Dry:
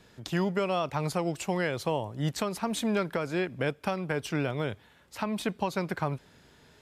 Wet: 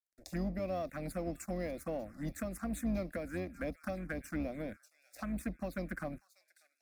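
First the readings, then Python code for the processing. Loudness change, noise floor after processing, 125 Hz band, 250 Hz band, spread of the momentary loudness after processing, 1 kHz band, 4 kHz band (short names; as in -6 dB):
-8.5 dB, -80 dBFS, -10.0 dB, -6.5 dB, 7 LU, -13.5 dB, -19.0 dB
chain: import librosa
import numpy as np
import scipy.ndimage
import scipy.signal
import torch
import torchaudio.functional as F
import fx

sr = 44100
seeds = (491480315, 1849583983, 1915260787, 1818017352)

p1 = fx.octave_divider(x, sr, octaves=2, level_db=-3.0)
p2 = scipy.signal.sosfilt(scipy.signal.butter(4, 51.0, 'highpass', fs=sr, output='sos'), p1)
p3 = np.sign(p2) * np.maximum(np.abs(p2) - 10.0 ** (-48.5 / 20.0), 0.0)
p4 = p3 + fx.echo_wet_highpass(p3, sr, ms=591, feedback_pct=46, hz=2300.0, wet_db=-15, dry=0)
p5 = fx.env_phaser(p4, sr, low_hz=160.0, high_hz=1500.0, full_db=-25.5)
p6 = fx.fixed_phaser(p5, sr, hz=620.0, stages=8)
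p7 = 10.0 ** (-39.0 / 20.0) * np.tanh(p6 / 10.0 ** (-39.0 / 20.0))
p8 = p6 + F.gain(torch.from_numpy(p7), -6.0).numpy()
y = F.gain(torch.from_numpy(p8), -4.5).numpy()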